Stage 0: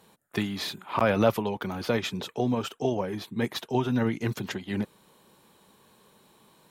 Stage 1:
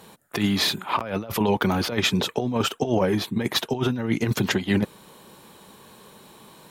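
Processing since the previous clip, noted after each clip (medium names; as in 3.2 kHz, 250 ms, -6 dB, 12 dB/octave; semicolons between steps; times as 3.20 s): compressor with a negative ratio -29 dBFS, ratio -0.5; trim +7.5 dB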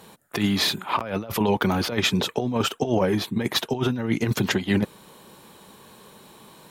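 no audible change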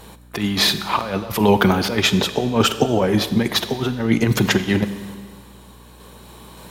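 random-step tremolo; Schroeder reverb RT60 1.6 s, combs from 31 ms, DRR 11.5 dB; hum 60 Hz, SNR 26 dB; trim +7.5 dB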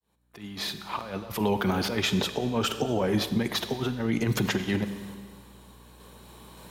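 fade-in on the opening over 1.81 s; peak limiter -9 dBFS, peak gain reduction 7.5 dB; trim -7 dB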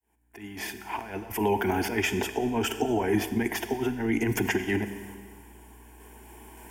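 static phaser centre 810 Hz, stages 8; trim +4 dB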